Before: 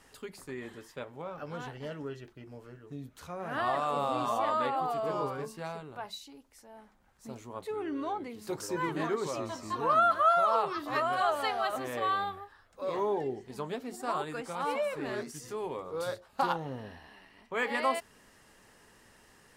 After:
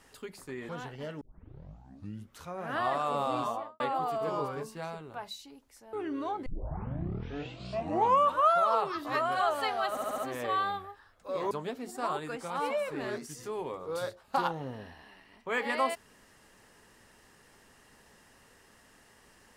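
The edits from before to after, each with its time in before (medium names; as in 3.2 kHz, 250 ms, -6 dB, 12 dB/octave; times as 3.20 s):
0.69–1.51 s: delete
2.03 s: tape start 1.21 s
4.20–4.62 s: studio fade out
6.75–7.74 s: delete
8.27 s: tape start 2.10 s
11.71 s: stutter 0.07 s, 5 plays
13.04–13.56 s: delete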